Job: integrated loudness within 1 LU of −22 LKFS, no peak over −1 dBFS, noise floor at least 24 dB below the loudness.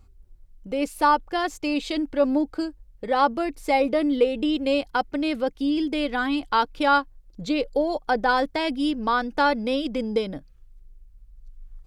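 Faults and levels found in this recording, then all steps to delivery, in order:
integrated loudness −24.0 LKFS; sample peak −7.5 dBFS; target loudness −22.0 LKFS
→ level +2 dB

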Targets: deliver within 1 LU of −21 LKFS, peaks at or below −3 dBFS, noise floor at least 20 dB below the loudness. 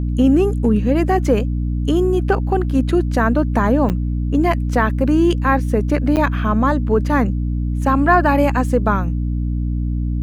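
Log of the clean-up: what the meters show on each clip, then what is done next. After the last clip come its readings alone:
number of dropouts 2; longest dropout 8.9 ms; mains hum 60 Hz; hum harmonics up to 300 Hz; level of the hum −17 dBFS; integrated loudness −17.5 LKFS; sample peak −2.5 dBFS; target loudness −21.0 LKFS
→ repair the gap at 0:03.89/0:06.16, 8.9 ms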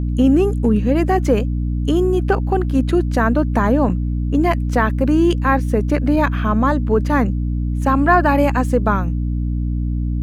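number of dropouts 0; mains hum 60 Hz; hum harmonics up to 300 Hz; level of the hum −17 dBFS
→ hum removal 60 Hz, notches 5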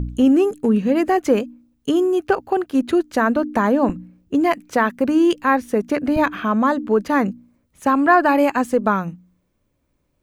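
mains hum none found; integrated loudness −18.5 LKFS; sample peak −3.5 dBFS; target loudness −21.0 LKFS
→ level −2.5 dB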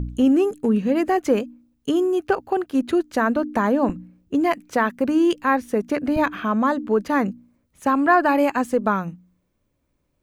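integrated loudness −21.0 LKFS; sample peak −6.0 dBFS; background noise floor −71 dBFS

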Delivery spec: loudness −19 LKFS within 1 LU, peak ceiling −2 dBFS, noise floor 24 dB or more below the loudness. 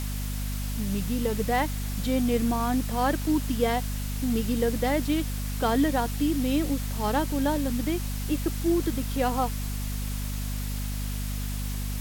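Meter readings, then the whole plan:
mains hum 50 Hz; hum harmonics up to 250 Hz; level of the hum −28 dBFS; background noise floor −31 dBFS; target noise floor −52 dBFS; integrated loudness −28.0 LKFS; sample peak −12.0 dBFS; target loudness −19.0 LKFS
→ mains-hum notches 50/100/150/200/250 Hz
broadband denoise 21 dB, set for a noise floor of −31 dBFS
level +9 dB

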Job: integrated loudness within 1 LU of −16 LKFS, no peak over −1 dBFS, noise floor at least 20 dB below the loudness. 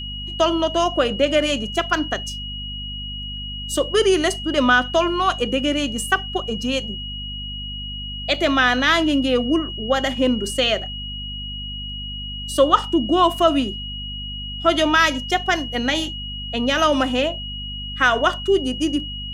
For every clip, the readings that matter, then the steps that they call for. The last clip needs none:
mains hum 50 Hz; hum harmonics up to 250 Hz; level of the hum −31 dBFS; interfering tone 2,900 Hz; level of the tone −30 dBFS; integrated loudness −20.5 LKFS; sample peak −2.0 dBFS; target loudness −16.0 LKFS
→ hum removal 50 Hz, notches 5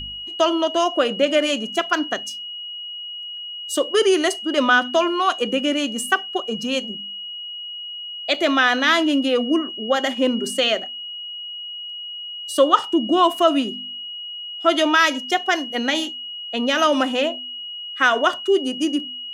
mains hum none found; interfering tone 2,900 Hz; level of the tone −30 dBFS
→ notch filter 2,900 Hz, Q 30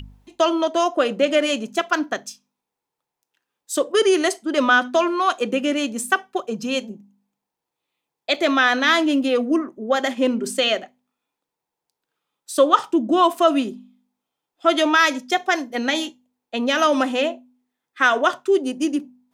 interfering tone none found; integrated loudness −20.0 LKFS; sample peak −2.5 dBFS; target loudness −16.0 LKFS
→ level +4 dB
brickwall limiter −1 dBFS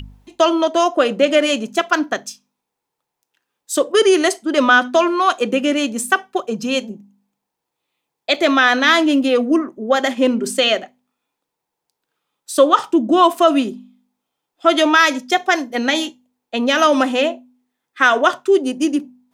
integrated loudness −16.5 LKFS; sample peak −1.0 dBFS; background noise floor −80 dBFS

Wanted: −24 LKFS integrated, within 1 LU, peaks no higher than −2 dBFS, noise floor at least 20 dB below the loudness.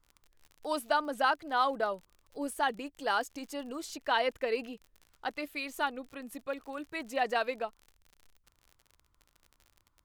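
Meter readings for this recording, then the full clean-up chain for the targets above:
crackle rate 47 per second; integrated loudness −33.5 LKFS; sample peak −14.5 dBFS; target loudness −24.0 LKFS
→ click removal
level +9.5 dB

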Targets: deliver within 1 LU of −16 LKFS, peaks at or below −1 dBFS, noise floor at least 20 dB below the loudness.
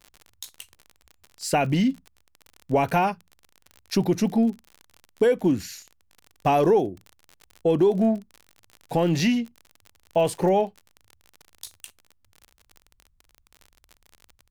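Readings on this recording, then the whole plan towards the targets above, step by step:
crackle rate 42 per second; integrated loudness −23.5 LKFS; sample peak −10.0 dBFS; target loudness −16.0 LKFS
→ click removal
level +7.5 dB

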